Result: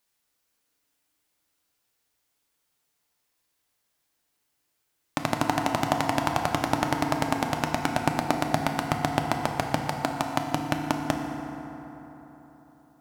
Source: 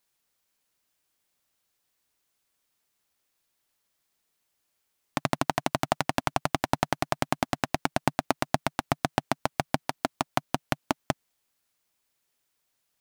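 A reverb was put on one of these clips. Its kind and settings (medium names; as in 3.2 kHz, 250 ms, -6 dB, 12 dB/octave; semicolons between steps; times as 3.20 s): FDN reverb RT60 3.9 s, high-frequency decay 0.45×, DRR 2.5 dB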